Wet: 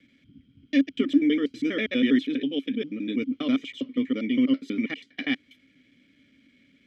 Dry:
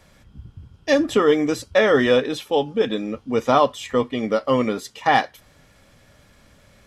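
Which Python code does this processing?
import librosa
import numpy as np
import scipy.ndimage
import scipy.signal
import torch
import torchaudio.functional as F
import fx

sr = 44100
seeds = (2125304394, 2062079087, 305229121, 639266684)

y = fx.block_reorder(x, sr, ms=81.0, group=3)
y = fx.vowel_filter(y, sr, vowel='i')
y = y * 10.0 ** (6.5 / 20.0)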